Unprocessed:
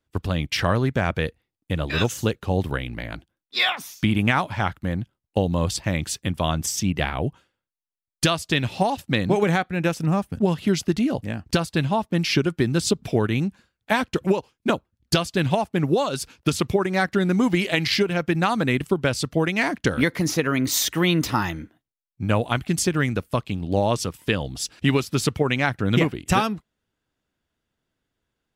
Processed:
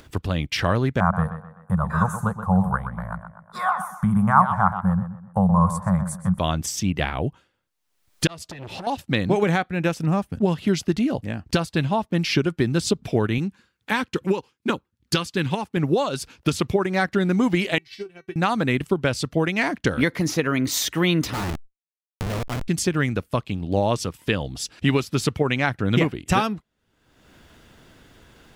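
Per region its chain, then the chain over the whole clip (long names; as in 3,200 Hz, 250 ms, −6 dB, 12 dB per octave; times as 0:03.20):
0:01.00–0:06.39: drawn EQ curve 130 Hz 0 dB, 190 Hz +10 dB, 290 Hz −25 dB, 500 Hz −7 dB, 1,100 Hz +13 dB, 1,500 Hz +2 dB, 2,600 Hz −29 dB, 5,100 Hz −21 dB, 9,500 Hz +5 dB, 15,000 Hz −9 dB + tape delay 125 ms, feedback 34%, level −9 dB, low-pass 3,600 Hz
0:08.27–0:08.87: downward compressor 10 to 1, threshold −28 dBFS + saturating transformer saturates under 1,300 Hz
0:13.38–0:15.77: high-pass filter 130 Hz 6 dB per octave + parametric band 650 Hz −14 dB 0.32 octaves
0:17.78–0:18.36: tuned comb filter 380 Hz, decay 0.18 s, mix 90% + expander for the loud parts 2.5 to 1, over −44 dBFS
0:21.33–0:22.68: comparator with hysteresis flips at −27 dBFS + level that may fall only so fast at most 130 dB per second
whole clip: high-shelf EQ 7,000 Hz −4.5 dB; upward compression, threshold −28 dBFS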